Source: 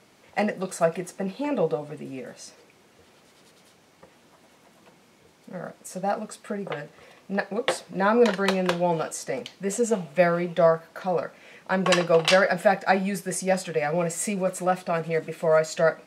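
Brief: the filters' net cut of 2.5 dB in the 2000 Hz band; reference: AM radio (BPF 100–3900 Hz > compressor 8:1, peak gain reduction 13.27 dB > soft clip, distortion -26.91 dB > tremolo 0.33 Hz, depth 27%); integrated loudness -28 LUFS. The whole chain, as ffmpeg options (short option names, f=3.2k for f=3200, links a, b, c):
-af "highpass=100,lowpass=3.9k,equalizer=f=2k:t=o:g=-3,acompressor=threshold=-27dB:ratio=8,asoftclip=threshold=-17.5dB,tremolo=f=0.33:d=0.27,volume=7dB"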